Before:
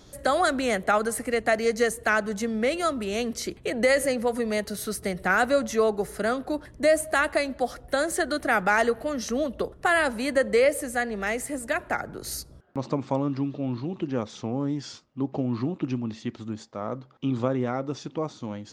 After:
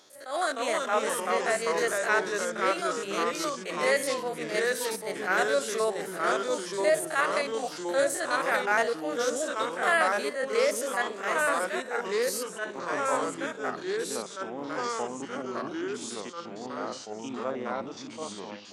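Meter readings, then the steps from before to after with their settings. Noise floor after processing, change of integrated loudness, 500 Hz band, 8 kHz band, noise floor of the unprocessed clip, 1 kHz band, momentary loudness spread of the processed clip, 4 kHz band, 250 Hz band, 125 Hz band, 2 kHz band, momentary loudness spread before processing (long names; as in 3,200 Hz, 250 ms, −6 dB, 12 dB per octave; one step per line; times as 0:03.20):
−42 dBFS, −2.5 dB, −2.5 dB, +0.5 dB, −50 dBFS, −0.5 dB, 10 LU, 0.0 dB, −8.5 dB, −15.0 dB, −1.5 dB, 11 LU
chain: spectrum averaged block by block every 50 ms
Bessel high-pass filter 620 Hz, order 2
delay with pitch and tempo change per echo 273 ms, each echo −2 semitones, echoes 3
level that may rise only so fast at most 150 dB per second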